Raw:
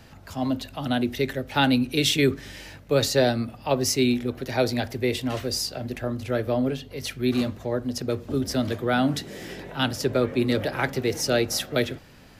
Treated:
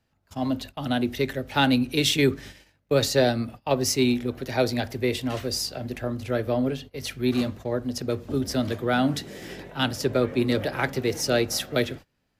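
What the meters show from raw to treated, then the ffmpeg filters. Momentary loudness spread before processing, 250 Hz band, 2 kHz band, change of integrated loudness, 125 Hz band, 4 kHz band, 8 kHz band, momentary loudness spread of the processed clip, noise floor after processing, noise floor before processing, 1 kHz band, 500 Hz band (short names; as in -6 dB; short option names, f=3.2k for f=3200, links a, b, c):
9 LU, -0.5 dB, -0.5 dB, -0.5 dB, -0.5 dB, -0.5 dB, -0.5 dB, 10 LU, -72 dBFS, -48 dBFS, -0.5 dB, -0.5 dB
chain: -af "aeval=exprs='0.422*(cos(1*acos(clip(val(0)/0.422,-1,1)))-cos(1*PI/2))+0.00596*(cos(7*acos(clip(val(0)/0.422,-1,1)))-cos(7*PI/2))':c=same,agate=range=-23dB:threshold=-39dB:ratio=16:detection=peak"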